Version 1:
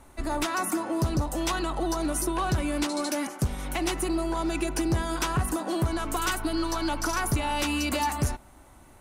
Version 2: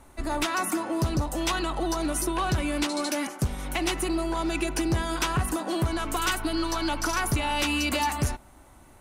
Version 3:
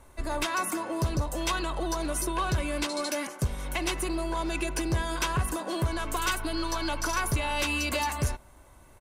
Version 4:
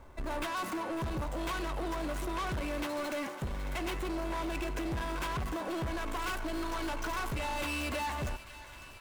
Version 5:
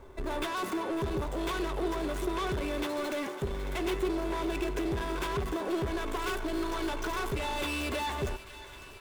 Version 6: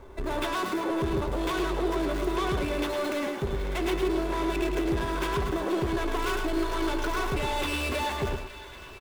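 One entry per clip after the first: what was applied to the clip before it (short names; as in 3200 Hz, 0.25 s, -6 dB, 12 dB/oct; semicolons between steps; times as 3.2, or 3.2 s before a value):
dynamic EQ 2800 Hz, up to +4 dB, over -42 dBFS, Q 0.91
comb 1.9 ms, depth 35%; gain -2.5 dB
median filter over 9 samples; soft clip -33.5 dBFS, distortion -8 dB; thin delay 0.55 s, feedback 76%, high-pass 1400 Hz, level -13.5 dB; gain +1.5 dB
small resonant body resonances 400/3500 Hz, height 15 dB, ringing for 75 ms; gain +1 dB
median filter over 5 samples; echo 0.107 s -5.5 dB; gain +3 dB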